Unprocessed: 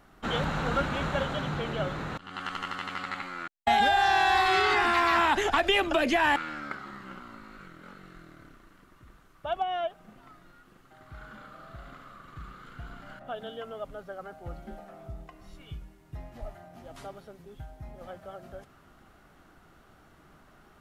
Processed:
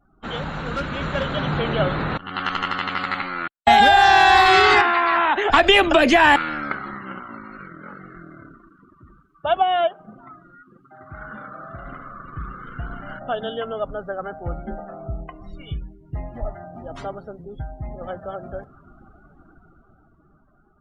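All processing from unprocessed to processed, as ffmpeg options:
-filter_complex "[0:a]asettb=1/sr,asplit=3[a][b][c];[a]atrim=end=0.614[d];[b]atrim=start=0.61:end=1.37,asetpts=PTS-STARTPTS,afade=t=in:d=0.004:c=qsin,afade=t=out:st=0.756:d=0.004:c=qsin,equalizer=f=790:t=o:w=0.45:g=-6,aeval=exprs='0.0944*(abs(mod(val(0)/0.0944+3,4)-2)-1)':c=same[e];[c]atrim=start=1.366[f];[d][e]acrossfade=d=0.004:c1=hsin:c2=qsin[g];[g][f]acrossfade=d=0.004:c1=qsin:c2=hsin,asettb=1/sr,asplit=3[h][i][j];[h]atrim=end=4.814[k];[i]atrim=start=4.81:end=5.5,asetpts=PTS-STARTPTS,afade=t=in:d=0.004:c=qsin,afade=t=out:st=0.686:d=0.004:c=qsin,lowpass=5.1k,acrossover=split=280|2800[l][m][n];[l]acompressor=threshold=-51dB:ratio=4[o];[m]acompressor=threshold=-26dB:ratio=4[p];[n]acompressor=threshold=-51dB:ratio=4[q];[o][p][q]amix=inputs=3:normalize=0,lowshelf=f=150:g=-11[r];[j]atrim=start=5.496[s];[k][r]acrossfade=d=0.004:c1=hsin:c2=qsin[t];[t][s]acrossfade=d=0.004:c1=qsin:c2=hsin,asettb=1/sr,asplit=3[u][v][w];[u]atrim=end=6.944[x];[v]atrim=start=6.94:end=11.85,asetpts=PTS-STARTPTS,afade=t=in:d=0.004:c=qsin,afade=t=out:st=4.906:d=0.004:c=qsin,highpass=f=91:p=1,bandreject=f=60:t=h:w=6,bandreject=f=120:t=h:w=6,bandreject=f=180:t=h:w=6,bandreject=f=240:t=h:w=6,bandreject=f=300:t=h:w=6,bandreject=f=360:t=h:w=6,bandreject=f=420:t=h:w=6,bandreject=f=480:t=h:w=6[y];[w]atrim=start=11.846[z];[x][y]acrossfade=d=0.004:c1=hsin:c2=qsin[aa];[aa][z]acrossfade=d=0.004:c1=qsin:c2=hsin,afftdn=nr=30:nf=-53,dynaudnorm=f=160:g=17:m=11.5dB"

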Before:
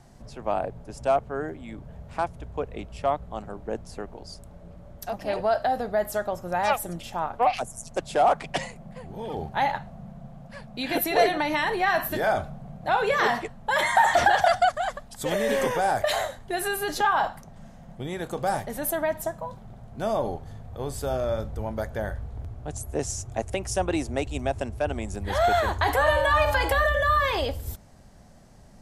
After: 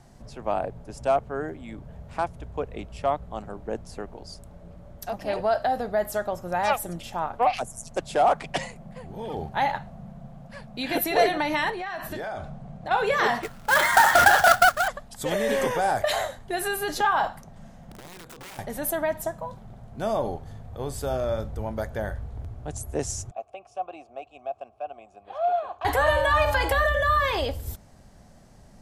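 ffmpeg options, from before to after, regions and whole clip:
-filter_complex "[0:a]asettb=1/sr,asplit=3[a][b][c];[a]atrim=end=11.704[d];[b]atrim=start=11.7:end=12.91,asetpts=PTS-STARTPTS,afade=t=in:d=0.004:c=qsin,afade=t=out:st=1.206:d=0.004:c=qsin,lowpass=8.7k,acompressor=threshold=-29dB:ratio=10:attack=3.2:release=140:knee=1:detection=peak[e];[c]atrim=start=12.906[f];[d][e]acrossfade=d=0.004:c1=hsin:c2=qsin[g];[g][f]acrossfade=d=0.004:c1=qsin:c2=hsin,asettb=1/sr,asplit=3[h][i][j];[h]atrim=end=13.434[k];[i]atrim=start=13.43:end=14.88,asetpts=PTS-STARTPTS,afade=t=in:d=0.004:c=qsin,afade=t=out:st=1.446:d=0.004:c=qsin,equalizer=f=1.4k:t=o:w=0.3:g=14.5,acrusher=bits=2:mode=log:mix=0:aa=0.000001[l];[j]atrim=start=14.876[m];[k][l]acrossfade=d=0.004:c1=hsin:c2=qsin[n];[n][m]acrossfade=d=0.004:c1=qsin:c2=hsin,asettb=1/sr,asplit=3[o][p][q];[o]atrim=end=17.914[r];[p]atrim=start=17.91:end=18.59,asetpts=PTS-STARTPTS,afade=t=in:d=0.004:c=qsin,afade=t=out:st=0.676:d=0.004:c=qsin,equalizer=f=98:t=o:w=2.5:g=4.5,acompressor=threshold=-38dB:ratio=10:attack=3.2:release=140:knee=1:detection=peak,aeval=exprs='(mod(75*val(0)+1,2)-1)/75':c=same[s];[q]atrim=start=18.586[t];[r][s]acrossfade=d=0.004:c1=hsin:c2=qsin[u];[u][t]acrossfade=d=0.004:c1=qsin:c2=hsin,asettb=1/sr,asplit=3[v][w][x];[v]atrim=end=23.314[y];[w]atrim=start=23.31:end=25.85,asetpts=PTS-STARTPTS,afade=t=in:d=0.004:c=qsin,afade=t=out:st=2.536:d=0.004:c=qsin,bandreject=f=2.4k:w=28,aeval=exprs='0.178*(abs(mod(val(0)/0.178+3,4)-2)-1)':c=same,asplit=3[z][aa][ab];[z]bandpass=f=730:t=q:w=8,volume=0dB[ac];[aa]bandpass=f=1.09k:t=q:w=8,volume=-6dB[ad];[ab]bandpass=f=2.44k:t=q:w=8,volume=-9dB[ae];[ac][ad][ae]amix=inputs=3:normalize=0[af];[x]atrim=start=25.846[ag];[y][af]acrossfade=d=0.004:c1=hsin:c2=qsin[ah];[ah][ag]acrossfade=d=0.004:c1=qsin:c2=hsin"

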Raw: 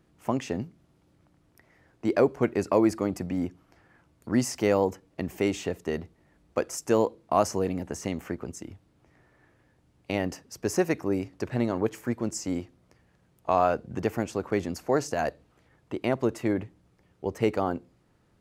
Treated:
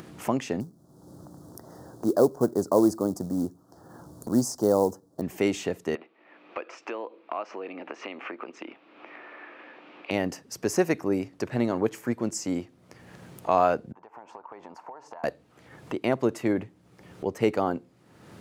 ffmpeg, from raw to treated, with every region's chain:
-filter_complex "[0:a]asettb=1/sr,asplit=3[a][b][c];[a]atrim=end=0.604[d];[b]atrim=start=0.6:end=5.22,asetpts=PTS-STARTPTS,afade=t=in:d=0.004:c=qsin,afade=t=out:st=4.616:d=0.004:c=qsin,acrusher=bits=5:mode=log:mix=0:aa=0.000001,asuperstop=centerf=2400:order=4:qfactor=0.61[e];[c]atrim=start=5.216[f];[d][e]acrossfade=d=0.004:c1=hsin:c2=qsin[g];[g][f]acrossfade=d=0.004:c1=qsin:c2=hsin,asettb=1/sr,asplit=3[h][i][j];[h]atrim=end=5.954[k];[i]atrim=start=5.95:end=10.11,asetpts=PTS-STARTPTS,afade=t=in:d=0.004:c=qsin,afade=t=out:st=4.156:d=0.004:c=qsin,acompressor=threshold=-35dB:ratio=2.5:attack=3.2:release=140:knee=1:detection=peak,highpass=f=320:w=0.5412,highpass=f=320:w=1.3066,equalizer=f=430:t=q:w=4:g=-4,equalizer=f=1.2k:t=q:w=4:g=5,equalizer=f=2.5k:t=q:w=4:g=9,lowpass=f=3.5k:w=0.5412,lowpass=f=3.5k:w=1.3066[l];[j]atrim=start=10.106[m];[k][l]acrossfade=d=0.004:c1=hsin:c2=qsin[n];[n][m]acrossfade=d=0.004:c1=qsin:c2=hsin,asettb=1/sr,asplit=3[o][p][q];[o]atrim=end=13.924[r];[p]atrim=start=13.92:end=15.24,asetpts=PTS-STARTPTS,afade=t=in:d=0.004:c=qsin,afade=t=out:st=1.316:d=0.004:c=qsin,bandpass=f=930:t=q:w=6.9,acompressor=threshold=-51dB:ratio=10:attack=3.2:release=140:knee=1:detection=peak[s];[q]atrim=start=15.236[t];[r][s]acrossfade=d=0.004:c1=hsin:c2=qsin[u];[u][t]acrossfade=d=0.004:c1=qsin:c2=hsin,highpass=120,acompressor=mode=upward:threshold=-32dB:ratio=2.5,volume=1.5dB"

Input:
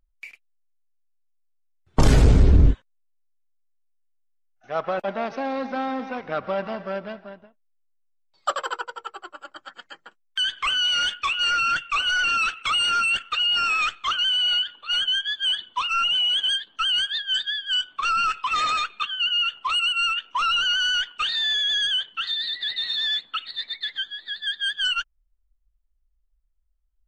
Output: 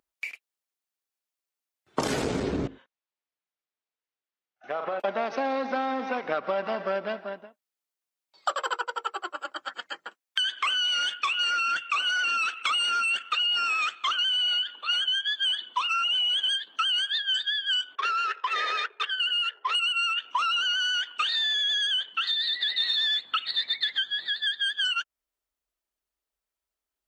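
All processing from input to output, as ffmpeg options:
-filter_complex "[0:a]asettb=1/sr,asplit=3[a][b][c];[a]atrim=end=2.674[d];[b]atrim=start=2.67:end=5,asetpts=PTS-STARTPTS,afade=t=in:d=0.004:c=qsin,afade=t=out:st=2.326:d=0.004:c=qsin,lowpass=3.7k,asplit=2[e][f];[f]adelay=41,volume=-8.5dB[g];[e][g]amix=inputs=2:normalize=0,atrim=end_sample=102753,acompressor=threshold=-31dB:ratio=8:attack=3.2:release=140:knee=1:detection=peak[h];[c]atrim=start=4.996[i];[d][h]acrossfade=d=0.004:c1=hsin:c2=qsin[j];[j][i]acrossfade=d=0.004:c1=qsin:c2=hsin,asettb=1/sr,asplit=3[k][l][m];[k]atrim=end=17.954[n];[l]atrim=start=17.95:end=19.75,asetpts=PTS-STARTPTS,afade=t=in:d=0.004:c=qsin,afade=t=out:st=1.796:d=0.004:c=qsin,adynamicsmooth=sensitivity=4:basefreq=1.1k,highpass=f=400:w=0.5412,highpass=f=400:w=1.3066,equalizer=f=420:t=q:w=4:g=9,equalizer=f=710:t=q:w=4:g=-5,equalizer=f=1.2k:t=q:w=4:g=-10,equalizer=f=1.8k:t=q:w=4:g=9,equalizer=f=2.6k:t=q:w=4:g=-7,equalizer=f=4.2k:t=q:w=4:g=-4,lowpass=f=4.6k:w=0.5412,lowpass=f=4.6k:w=1.3066[o];[m]atrim=start=19.746[p];[n][o]acrossfade=d=0.004:c1=hsin:c2=qsin[q];[q][p]acrossfade=d=0.004:c1=qsin:c2=hsin,asettb=1/sr,asplit=3[r][s][t];[r]atrim=end=22.804[u];[s]atrim=start=22.8:end=24.27,asetpts=PTS-STARTPTS,afade=t=in:d=0.004:c=qsin,afade=t=out:st=1.466:d=0.004:c=qsin,aeval=exprs='val(0)+0.000794*(sin(2*PI*50*n/s)+sin(2*PI*2*50*n/s)/2+sin(2*PI*3*50*n/s)/3+sin(2*PI*4*50*n/s)/4+sin(2*PI*5*50*n/s)/5)':c=same,acontrast=37[v];[t]atrim=start=24.266[w];[u][v]acrossfade=d=0.004:c1=hsin:c2=qsin[x];[x][w]acrossfade=d=0.004:c1=qsin:c2=hsin,highpass=290,acompressor=threshold=-30dB:ratio=6,volume=5.5dB"

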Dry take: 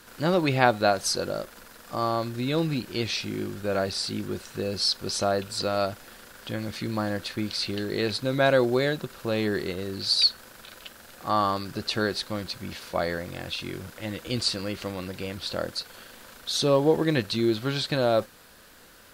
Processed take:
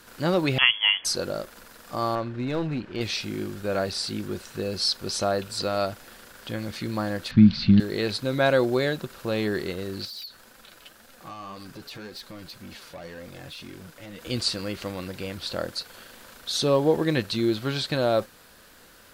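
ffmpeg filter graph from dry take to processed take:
-filter_complex "[0:a]asettb=1/sr,asplit=3[a][b][c];[a]atrim=end=0.584[d];[b]atrim=start=0.58:end=1.05,asetpts=PTS-STARTPTS,afade=t=in:d=0.004:c=qsin,afade=t=out:st=0.466:d=0.004:c=qsin,highpass=93,lowpass=f=3k:t=q:w=0.5098,lowpass=f=3k:t=q:w=0.6013,lowpass=f=3k:t=q:w=0.9,lowpass=f=3k:t=q:w=2.563,afreqshift=-3500[e];[c]atrim=start=1.046[f];[d][e]acrossfade=d=0.004:c1=hsin:c2=qsin[g];[g][f]acrossfade=d=0.004:c1=qsin:c2=hsin,asettb=1/sr,asplit=3[h][i][j];[h]atrim=end=2.154[k];[i]atrim=start=2.15:end=3.01,asetpts=PTS-STARTPTS,afade=t=in:d=0.004:c=qsin,afade=t=out:st=0.856:d=0.004:c=qsin,lowpass=2.5k,aeval=exprs='clip(val(0),-1,0.0531)':c=same[l];[j]atrim=start=3.006[m];[k][l]acrossfade=d=0.004:c1=hsin:c2=qsin[n];[n][m]acrossfade=d=0.004:c1=qsin:c2=hsin,asettb=1/sr,asplit=3[o][p][q];[o]atrim=end=7.314[r];[p]atrim=start=7.31:end=7.8,asetpts=PTS-STARTPTS,afade=t=in:d=0.004:c=qsin,afade=t=out:st=0.486:d=0.004:c=qsin,lowpass=f=4.5k:w=0.5412,lowpass=f=4.5k:w=1.3066,lowshelf=f=290:t=q:w=3:g=13.5[s];[q]atrim=start=7.796[t];[r][s]acrossfade=d=0.004:c1=hsin:c2=qsin[u];[u][t]acrossfade=d=0.004:c1=qsin:c2=hsin,asettb=1/sr,asplit=3[v][w][x];[v]atrim=end=10.054[y];[w]atrim=start=10.05:end=14.21,asetpts=PTS-STARTPTS,afade=t=in:d=0.004:c=qsin,afade=t=out:st=4.156:d=0.004:c=qsin,acompressor=threshold=-29dB:ratio=4:attack=3.2:release=140:knee=1:detection=peak,volume=32dB,asoftclip=hard,volume=-32dB,flanger=delay=3.7:depth=3.4:regen=45:speed=1.9:shape=sinusoidal[z];[x]atrim=start=14.206[aa];[y][z]acrossfade=d=0.004:c1=hsin:c2=qsin[ab];[ab][aa]acrossfade=d=0.004:c1=qsin:c2=hsin"

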